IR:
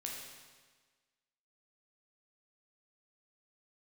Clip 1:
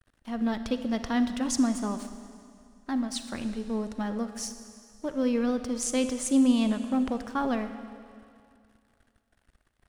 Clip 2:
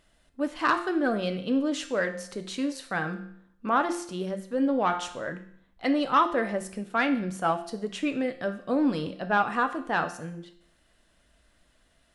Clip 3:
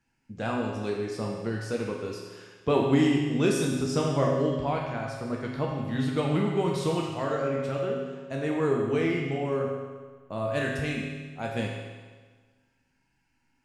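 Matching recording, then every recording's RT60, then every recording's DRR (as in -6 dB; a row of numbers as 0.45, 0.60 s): 3; 2.3, 0.65, 1.4 s; 9.0, 7.5, -2.0 dB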